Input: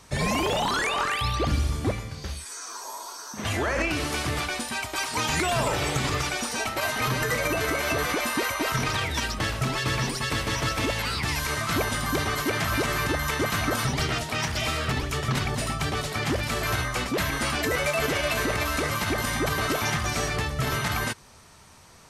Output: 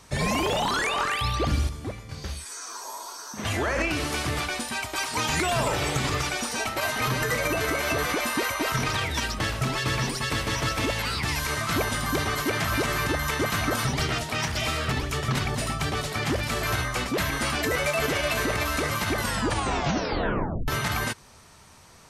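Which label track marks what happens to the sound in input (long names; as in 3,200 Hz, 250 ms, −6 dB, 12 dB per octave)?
1.690000	2.090000	clip gain −7.5 dB
19.160000	19.160000	tape stop 1.52 s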